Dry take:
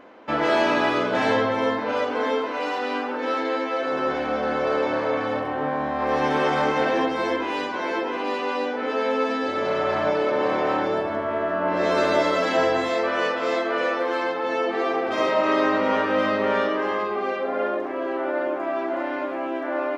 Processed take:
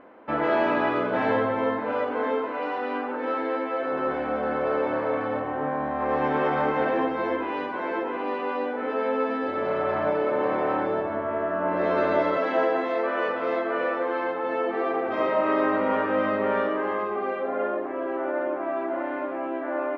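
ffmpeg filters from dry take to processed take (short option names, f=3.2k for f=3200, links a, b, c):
-filter_complex "[0:a]asettb=1/sr,asplit=3[a][b][c];[a]atrim=end=12.374[d];[b]atrim=start=12.37:end=13.29,asetpts=PTS-STARTPTS,afade=t=in:d=0.004:c=qsin,afade=t=out:st=0.916:d=0.004:c=qsin,highpass=f=220:w=0.5412,highpass=f=220:w=1.3066[e];[c]atrim=start=13.286[f];[d][e]acrossfade=d=0.004:c1=hsin:c2=qsin[g];[g][f]acrossfade=d=0.004:c1=qsin:c2=hsin,lowpass=2k,volume=-2dB"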